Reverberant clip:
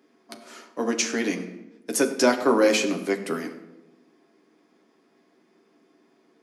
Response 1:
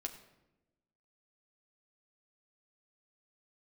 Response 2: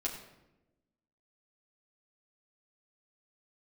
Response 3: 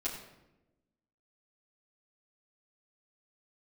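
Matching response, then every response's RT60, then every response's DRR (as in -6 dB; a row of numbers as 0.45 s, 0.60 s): 1; 1.0 s, 1.0 s, 0.95 s; 3.0 dB, -4.0 dB, -9.5 dB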